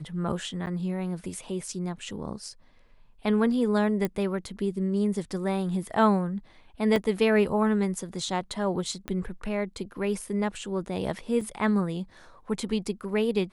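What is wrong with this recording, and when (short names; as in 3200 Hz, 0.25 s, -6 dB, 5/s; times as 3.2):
0.66–0.67 gap 8.9 ms
4.05 pop -15 dBFS
6.96 gap 2 ms
9.08 pop -18 dBFS
11.41 gap 3.4 ms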